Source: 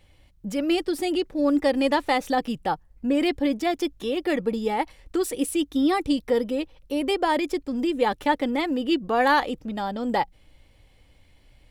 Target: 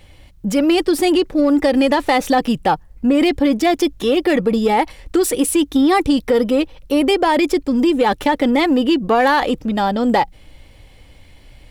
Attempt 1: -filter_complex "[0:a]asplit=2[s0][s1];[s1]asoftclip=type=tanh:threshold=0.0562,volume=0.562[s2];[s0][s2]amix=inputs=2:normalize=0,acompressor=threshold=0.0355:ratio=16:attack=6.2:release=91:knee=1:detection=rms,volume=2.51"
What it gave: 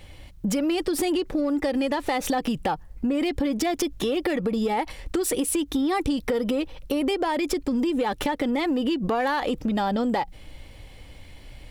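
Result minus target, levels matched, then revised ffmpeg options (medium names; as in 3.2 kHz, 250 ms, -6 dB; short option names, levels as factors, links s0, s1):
compression: peak gain reduction +10.5 dB
-filter_complex "[0:a]asplit=2[s0][s1];[s1]asoftclip=type=tanh:threshold=0.0562,volume=0.562[s2];[s0][s2]amix=inputs=2:normalize=0,acompressor=threshold=0.126:ratio=16:attack=6.2:release=91:knee=1:detection=rms,volume=2.51"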